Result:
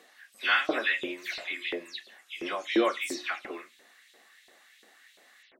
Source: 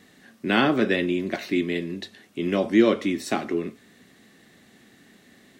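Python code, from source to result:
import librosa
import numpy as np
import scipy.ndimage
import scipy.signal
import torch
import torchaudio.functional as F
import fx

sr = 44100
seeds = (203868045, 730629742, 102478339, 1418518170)

y = fx.spec_delay(x, sr, highs='early', ms=169)
y = scipy.signal.sosfilt(scipy.signal.butter(2, 170.0, 'highpass', fs=sr, output='sos'), y)
y = fx.filter_lfo_highpass(y, sr, shape='saw_up', hz=2.9, low_hz=430.0, high_hz=3500.0, q=1.7)
y = fx.hum_notches(y, sr, base_hz=60, count=6)
y = y * 10.0 ** (-2.0 / 20.0)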